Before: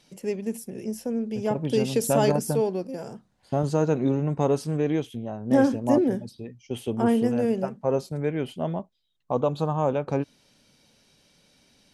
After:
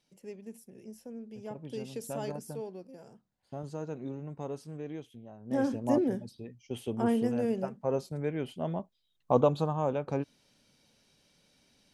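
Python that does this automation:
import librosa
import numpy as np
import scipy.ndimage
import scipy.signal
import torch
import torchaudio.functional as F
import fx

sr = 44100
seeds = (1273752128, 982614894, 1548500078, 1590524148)

y = fx.gain(x, sr, db=fx.line((5.36, -15.5), (5.76, -6.0), (8.59, -6.0), (9.38, 1.5), (9.74, -6.0)))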